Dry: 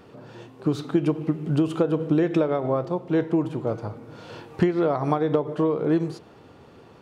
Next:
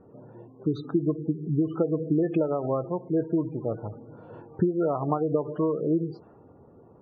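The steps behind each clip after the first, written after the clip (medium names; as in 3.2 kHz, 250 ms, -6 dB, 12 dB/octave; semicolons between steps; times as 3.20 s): spectral gate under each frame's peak -20 dB strong; level-controlled noise filter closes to 720 Hz, open at -18 dBFS; trim -3 dB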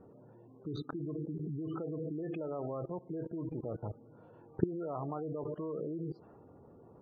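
level held to a coarse grid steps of 19 dB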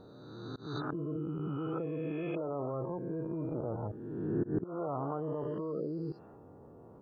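reverse spectral sustain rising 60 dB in 1.68 s; slow attack 210 ms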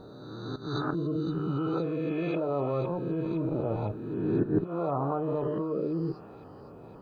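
feedback echo behind a high-pass 511 ms, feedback 76%, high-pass 1.8 kHz, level -10 dB; on a send at -10 dB: reverberation, pre-delay 5 ms; on the sum: trim +6 dB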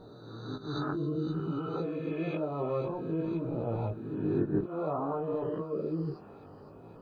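chorus 0.55 Hz, delay 17 ms, depth 3.4 ms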